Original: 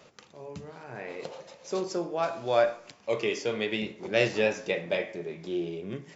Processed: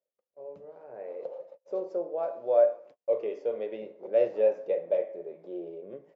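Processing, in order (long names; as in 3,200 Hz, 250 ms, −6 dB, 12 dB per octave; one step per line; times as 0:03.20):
noise gate −47 dBFS, range −34 dB
resonant band-pass 540 Hz, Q 4.6
level +5 dB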